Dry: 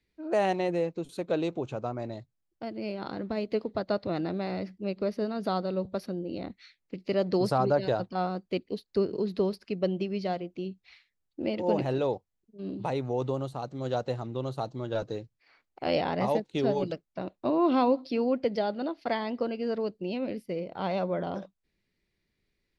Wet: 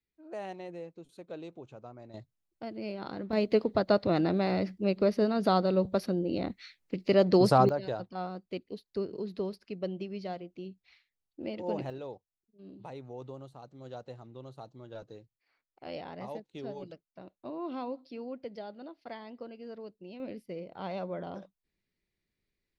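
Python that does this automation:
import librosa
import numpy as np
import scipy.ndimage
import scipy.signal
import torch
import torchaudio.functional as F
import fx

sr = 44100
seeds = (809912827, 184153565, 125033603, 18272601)

y = fx.gain(x, sr, db=fx.steps((0.0, -14.0), (2.14, -3.0), (3.33, 4.0), (7.69, -7.0), (11.9, -13.5), (20.2, -7.0)))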